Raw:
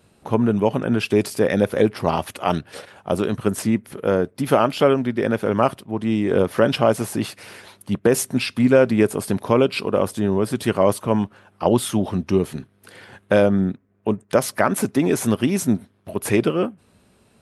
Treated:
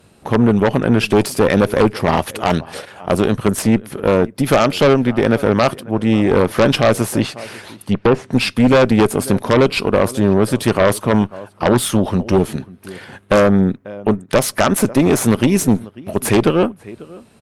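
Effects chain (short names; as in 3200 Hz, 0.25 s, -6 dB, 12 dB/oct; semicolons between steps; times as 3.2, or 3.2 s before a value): outdoor echo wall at 93 m, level -22 dB; 7.2–8.33 treble ducked by the level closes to 1700 Hz, closed at -15 dBFS; added harmonics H 5 -11 dB, 6 -13 dB, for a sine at -2.5 dBFS; gain -1 dB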